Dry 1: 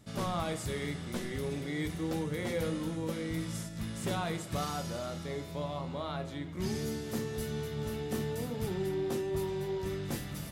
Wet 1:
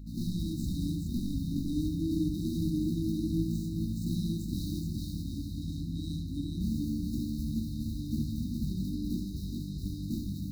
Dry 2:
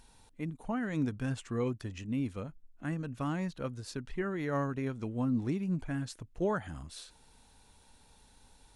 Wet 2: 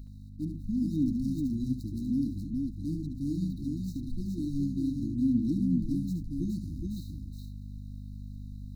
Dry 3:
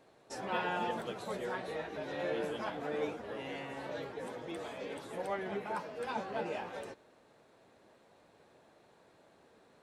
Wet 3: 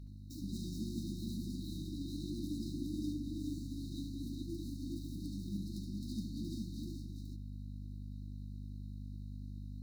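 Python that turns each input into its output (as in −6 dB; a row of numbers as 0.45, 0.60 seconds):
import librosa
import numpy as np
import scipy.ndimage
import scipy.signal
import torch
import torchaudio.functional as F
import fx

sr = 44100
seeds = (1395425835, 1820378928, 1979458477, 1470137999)

y = scipy.ndimage.median_filter(x, 9, mode='constant')
y = fx.graphic_eq_10(y, sr, hz=(125, 500, 8000), db=(-10, -5, -7))
y = fx.add_hum(y, sr, base_hz=50, snr_db=12)
y = fx.brickwall_bandstop(y, sr, low_hz=340.0, high_hz=3700.0)
y = fx.echo_multitap(y, sr, ms=(71, 420), db=(-7.5, -3.5))
y = y * librosa.db_to_amplitude(7.5)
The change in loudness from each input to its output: +2.0, +3.5, −4.0 LU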